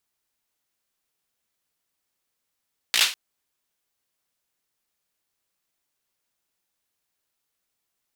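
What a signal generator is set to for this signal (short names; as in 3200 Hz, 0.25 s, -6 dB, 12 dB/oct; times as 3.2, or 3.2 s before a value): hand clap length 0.20 s, bursts 5, apart 17 ms, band 3100 Hz, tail 0.33 s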